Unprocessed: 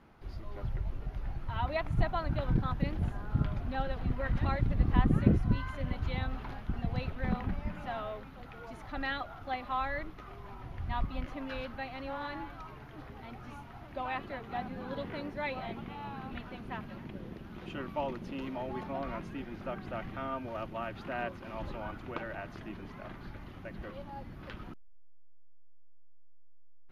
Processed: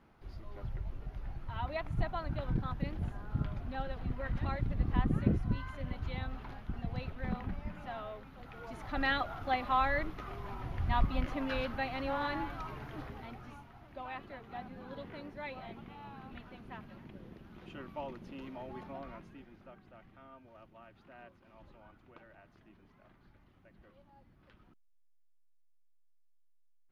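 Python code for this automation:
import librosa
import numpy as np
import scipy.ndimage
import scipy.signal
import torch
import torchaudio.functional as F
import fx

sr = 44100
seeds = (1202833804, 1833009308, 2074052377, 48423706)

y = fx.gain(x, sr, db=fx.line((8.22, -4.5), (9.09, 4.0), (12.96, 4.0), (13.73, -7.0), (18.89, -7.0), (19.91, -18.0)))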